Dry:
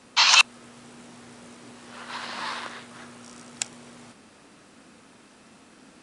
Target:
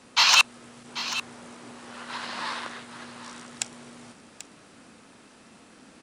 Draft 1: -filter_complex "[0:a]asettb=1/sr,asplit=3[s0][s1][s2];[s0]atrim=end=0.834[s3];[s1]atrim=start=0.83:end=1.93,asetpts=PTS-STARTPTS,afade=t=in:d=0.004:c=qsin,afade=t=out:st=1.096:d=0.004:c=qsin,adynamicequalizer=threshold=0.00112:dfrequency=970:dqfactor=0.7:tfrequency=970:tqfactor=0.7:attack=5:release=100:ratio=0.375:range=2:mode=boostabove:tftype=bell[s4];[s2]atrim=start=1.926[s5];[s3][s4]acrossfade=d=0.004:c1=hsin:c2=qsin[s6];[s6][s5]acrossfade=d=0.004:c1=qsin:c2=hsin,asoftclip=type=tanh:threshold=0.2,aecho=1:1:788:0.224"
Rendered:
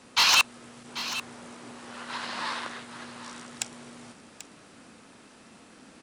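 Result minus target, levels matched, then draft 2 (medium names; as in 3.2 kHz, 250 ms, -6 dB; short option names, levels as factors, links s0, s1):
saturation: distortion +8 dB
-filter_complex "[0:a]asettb=1/sr,asplit=3[s0][s1][s2];[s0]atrim=end=0.834[s3];[s1]atrim=start=0.83:end=1.93,asetpts=PTS-STARTPTS,afade=t=in:d=0.004:c=qsin,afade=t=out:st=1.096:d=0.004:c=qsin,adynamicequalizer=threshold=0.00112:dfrequency=970:dqfactor=0.7:tfrequency=970:tqfactor=0.7:attack=5:release=100:ratio=0.375:range=2:mode=boostabove:tftype=bell[s4];[s2]atrim=start=1.926[s5];[s3][s4]acrossfade=d=0.004:c1=hsin:c2=qsin[s6];[s6][s5]acrossfade=d=0.004:c1=qsin:c2=hsin,asoftclip=type=tanh:threshold=0.447,aecho=1:1:788:0.224"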